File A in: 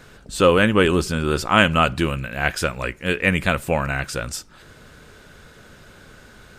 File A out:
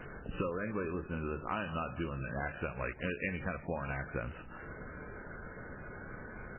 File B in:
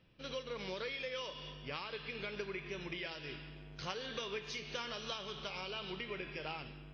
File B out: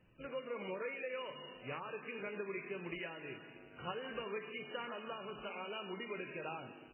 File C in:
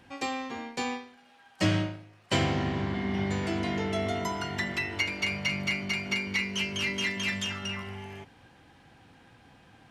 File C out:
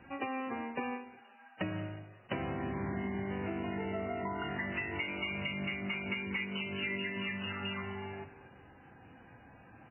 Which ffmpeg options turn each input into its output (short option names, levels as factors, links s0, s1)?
-af "lowpass=f=2800:p=1,bandreject=f=50:t=h:w=6,bandreject=f=100:t=h:w=6,bandreject=f=150:t=h:w=6,acompressor=threshold=0.0224:ratio=20,aecho=1:1:181|362|543|724:0.141|0.065|0.0299|0.0137,volume=1.12" -ar 8000 -c:a libmp3lame -b:a 8k